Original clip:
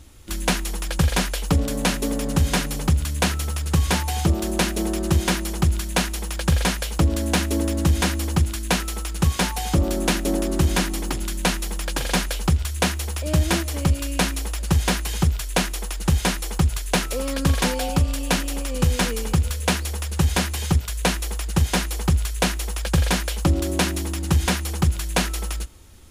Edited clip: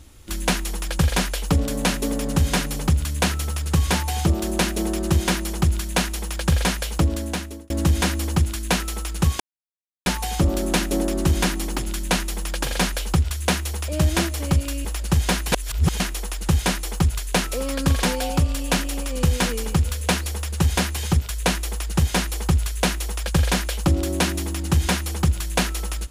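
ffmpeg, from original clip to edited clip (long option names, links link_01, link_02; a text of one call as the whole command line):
ffmpeg -i in.wav -filter_complex "[0:a]asplit=6[link_01][link_02][link_03][link_04][link_05][link_06];[link_01]atrim=end=7.7,asetpts=PTS-STARTPTS,afade=type=out:start_time=6.97:duration=0.73[link_07];[link_02]atrim=start=7.7:end=9.4,asetpts=PTS-STARTPTS,afade=type=in:duration=0.004:curve=hsin,afade=type=out:start_time=1.696:duration=0.004:curve=hsin,apad=pad_dur=0.66[link_08];[link_03]atrim=start=9.4:end=14.192,asetpts=PTS-STARTPTS,afade=type=in:duration=0.004:curve=hsin[link_09];[link_04]atrim=start=14.438:end=15.112[link_10];[link_05]atrim=start=15.108:end=15.592,asetpts=PTS-STARTPTS,areverse[link_11];[link_06]atrim=start=15.588[link_12];[link_07][link_08][link_09]concat=n=3:v=0:a=1[link_13];[link_13][link_10]acrossfade=duration=0.004:curve1=hsin:curve2=hsin[link_14];[link_14][link_11]acrossfade=duration=0.004:curve1=hsin:curve2=hsin[link_15];[link_15][link_12]acrossfade=duration=0.004:curve1=hsin:curve2=hsin" out.wav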